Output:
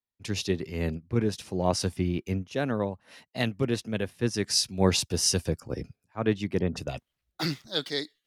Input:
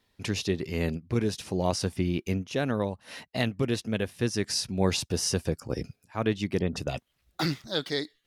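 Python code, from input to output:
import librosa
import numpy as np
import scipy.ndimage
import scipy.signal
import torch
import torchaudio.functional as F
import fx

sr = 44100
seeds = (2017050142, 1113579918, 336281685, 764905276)

y = fx.band_widen(x, sr, depth_pct=70)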